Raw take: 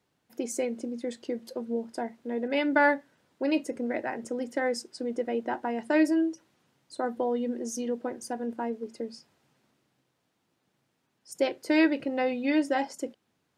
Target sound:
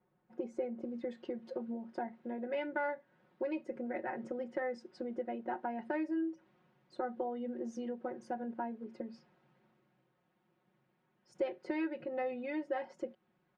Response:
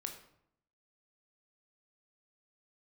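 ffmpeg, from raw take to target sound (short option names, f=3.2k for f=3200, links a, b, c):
-af "asetnsamples=n=441:p=0,asendcmd='0.83 lowpass f 2100',lowpass=1.3k,acompressor=threshold=-36dB:ratio=3,aecho=1:1:5.5:0.86,volume=-2.5dB"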